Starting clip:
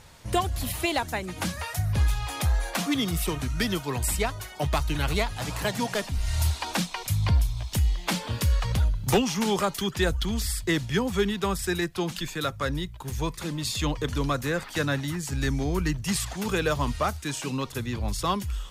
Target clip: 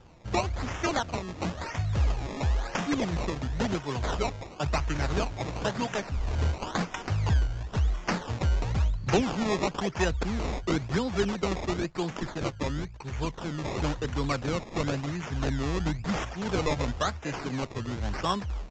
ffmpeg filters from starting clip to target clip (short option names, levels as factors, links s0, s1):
-af "adynamicequalizer=threshold=0.00398:dfrequency=3600:dqfactor=1.8:tfrequency=3600:tqfactor=1.8:attack=5:release=100:ratio=0.375:range=2:mode=boostabove:tftype=bell,acrusher=samples=20:mix=1:aa=0.000001:lfo=1:lforange=20:lforate=0.97,aresample=16000,aresample=44100,volume=0.75"